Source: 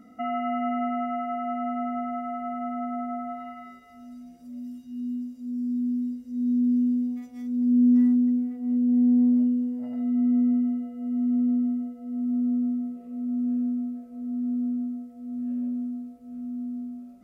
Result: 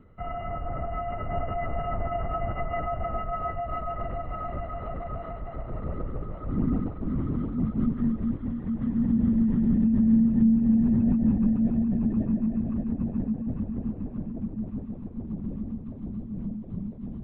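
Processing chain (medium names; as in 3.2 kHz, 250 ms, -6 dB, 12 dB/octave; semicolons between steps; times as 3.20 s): pitch bend over the whole clip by -3 st starting unshifted; dynamic bell 220 Hz, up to -5 dB, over -36 dBFS, Q 0.92; echo with a slow build-up 143 ms, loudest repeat 8, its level -6 dB; LPC vocoder at 8 kHz whisper; trim -3 dB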